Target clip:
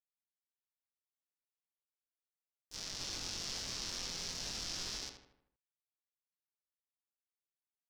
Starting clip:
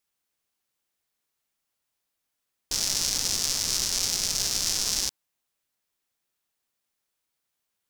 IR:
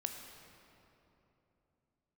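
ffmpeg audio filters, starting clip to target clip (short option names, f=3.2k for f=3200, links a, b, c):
-filter_complex "[0:a]agate=range=-33dB:threshold=-15dB:ratio=3:detection=peak,acrossover=split=5400[a][b];[b]acompressor=threshold=-57dB:ratio=4:attack=1:release=60[c];[a][c]amix=inputs=2:normalize=0,alimiter=level_in=10dB:limit=-24dB:level=0:latency=1,volume=-10dB,asettb=1/sr,asplit=3[d][e][f];[d]atrim=end=2.984[g];[e]atrim=start=2.98:end=4.98,asetpts=PTS-STARTPTS,afade=t=in:d=0.004:c=qsin,afade=t=out:st=1.996:d=0.004:c=qsin,asplit=2[h][i];[i]adelay=23,volume=-2dB[j];[h][j]amix=inputs=2:normalize=0,atrim=end_sample=88200[k];[f]atrim=start=4.976[l];[g][k]acrossfade=d=0.004:c1=hsin:c2=qsin[m];[m][l]acrossfade=d=0.004:c1=qsin:c2=hsin,asplit=2[n][o];[o]adelay=78,lowpass=f=2.9k:p=1,volume=-6dB,asplit=2[p][q];[q]adelay=78,lowpass=f=2.9k:p=1,volume=0.52,asplit=2[r][s];[s]adelay=78,lowpass=f=2.9k:p=1,volume=0.52,asplit=2[t][u];[u]adelay=78,lowpass=f=2.9k:p=1,volume=0.52,asplit=2[v][w];[w]adelay=78,lowpass=f=2.9k:p=1,volume=0.52,asplit=2[x][y];[y]adelay=78,lowpass=f=2.9k:p=1,volume=0.52[z];[n][p][r][t][v][x][z]amix=inputs=7:normalize=0,volume=6.5dB"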